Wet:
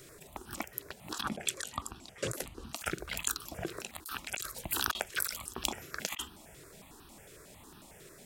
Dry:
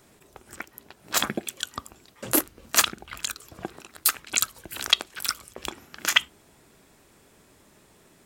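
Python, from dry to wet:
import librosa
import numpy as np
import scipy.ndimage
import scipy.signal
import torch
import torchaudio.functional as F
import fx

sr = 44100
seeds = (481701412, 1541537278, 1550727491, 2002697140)

y = fx.lowpass(x, sr, hz=9600.0, slope=12, at=(1.14, 2.75))
y = fx.over_compress(y, sr, threshold_db=-34.0, ratio=-1.0)
y = fx.phaser_held(y, sr, hz=11.0, low_hz=230.0, high_hz=2100.0)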